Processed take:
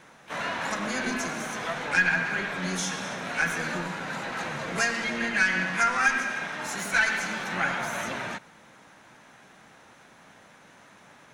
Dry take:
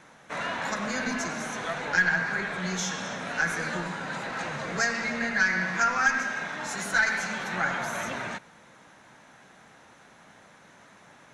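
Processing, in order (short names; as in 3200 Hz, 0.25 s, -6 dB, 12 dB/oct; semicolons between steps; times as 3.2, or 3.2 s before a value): harmoniser +7 st -9 dB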